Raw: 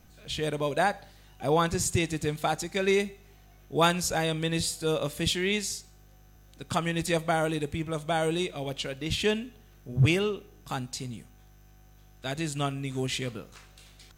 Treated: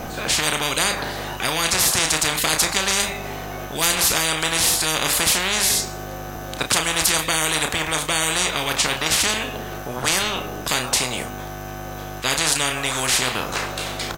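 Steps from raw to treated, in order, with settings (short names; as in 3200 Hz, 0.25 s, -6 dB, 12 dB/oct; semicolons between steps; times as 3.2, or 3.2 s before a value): bell 710 Hz +12 dB 2.4 oct; doubler 32 ms -9 dB; spectral compressor 10:1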